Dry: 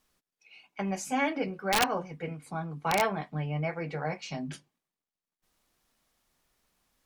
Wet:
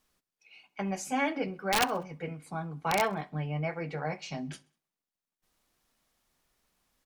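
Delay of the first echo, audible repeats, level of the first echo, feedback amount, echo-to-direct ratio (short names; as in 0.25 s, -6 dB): 65 ms, 2, -24.0 dB, 49%, -23.0 dB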